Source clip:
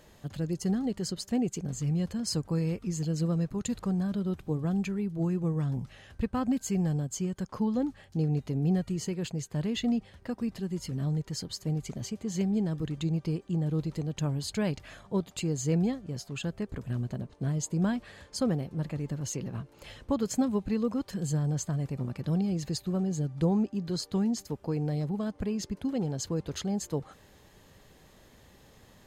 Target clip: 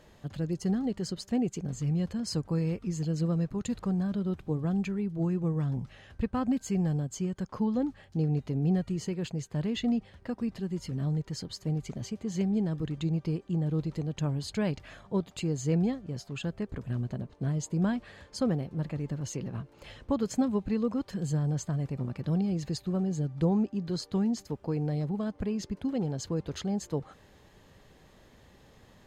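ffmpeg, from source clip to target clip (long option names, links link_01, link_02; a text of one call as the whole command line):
ffmpeg -i in.wav -af "highshelf=frequency=7100:gain=-10" out.wav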